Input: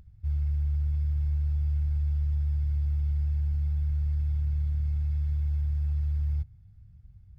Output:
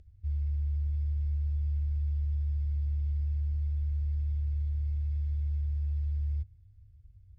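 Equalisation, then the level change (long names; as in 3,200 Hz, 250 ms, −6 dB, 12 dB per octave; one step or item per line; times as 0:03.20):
high-frequency loss of the air 50 metres
parametric band 91 Hz +5 dB 0.51 octaves
phaser with its sweep stopped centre 420 Hz, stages 4
−3.0 dB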